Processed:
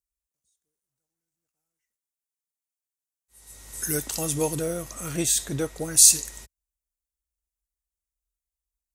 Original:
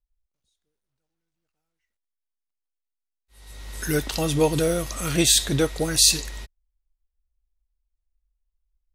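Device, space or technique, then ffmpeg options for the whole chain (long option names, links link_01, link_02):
budget condenser microphone: -filter_complex "[0:a]highpass=66,highshelf=frequency=5400:width_type=q:width=1.5:gain=10,asettb=1/sr,asplit=3[link_01][link_02][link_03];[link_01]atrim=end=4.554[link_04];[link_02]atrim=start=4.55:end=5.97,asetpts=PTS-STARTPTS,afade=type=in:duration=0.004:curve=qsin,afade=type=out:start_time=1.416:duration=0.004:curve=qsin,equalizer=frequency=10000:width=0.4:gain=-9.5[link_05];[link_03]atrim=start=5.966[link_06];[link_04][link_05]acrossfade=duration=0.004:curve1=hsin:curve2=qsin[link_07];[link_07][link_06]acrossfade=duration=0.004:curve1=qsin:curve2=hsin,volume=-6dB"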